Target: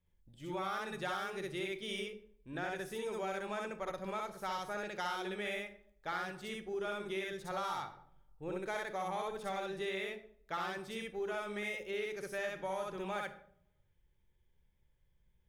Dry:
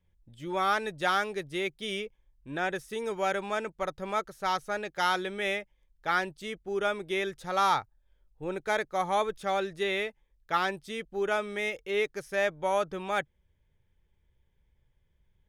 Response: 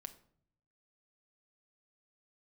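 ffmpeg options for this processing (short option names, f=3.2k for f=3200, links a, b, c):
-filter_complex "[0:a]asoftclip=type=tanh:threshold=-17.5dB,asplit=2[a][b];[1:a]atrim=start_sample=2205,highshelf=f=9.7k:g=8,adelay=63[c];[b][c]afir=irnorm=-1:irlink=0,volume=5dB[d];[a][d]amix=inputs=2:normalize=0,acompressor=threshold=-28dB:ratio=6,volume=-7dB"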